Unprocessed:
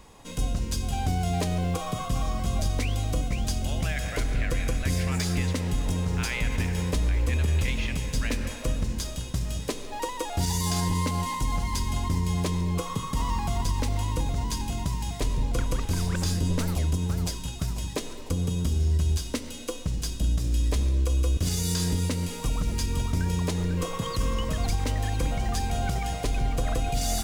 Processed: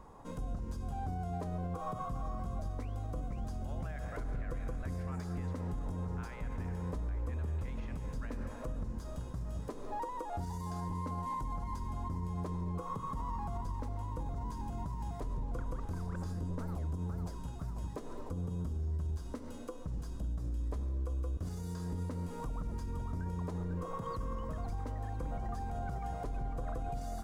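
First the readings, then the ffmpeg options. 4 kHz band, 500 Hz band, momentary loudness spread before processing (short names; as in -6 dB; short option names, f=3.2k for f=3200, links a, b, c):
-26.0 dB, -10.0 dB, 5 LU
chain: -af "alimiter=level_in=3dB:limit=-24dB:level=0:latency=1:release=203,volume=-3dB,highshelf=f=1.8k:t=q:w=1.5:g=-13,volume=-3dB"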